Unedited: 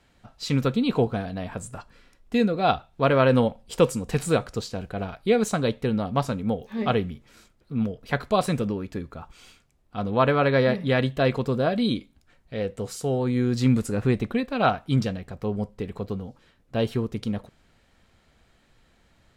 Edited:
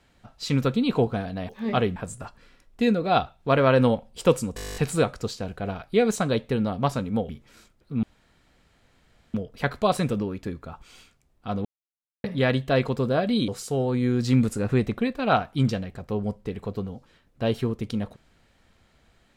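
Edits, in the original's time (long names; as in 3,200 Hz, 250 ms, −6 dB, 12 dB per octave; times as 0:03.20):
0:04.09: stutter 0.02 s, 11 plays
0:06.62–0:07.09: move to 0:01.49
0:07.83: splice in room tone 1.31 s
0:10.14–0:10.73: silence
0:11.97–0:12.81: remove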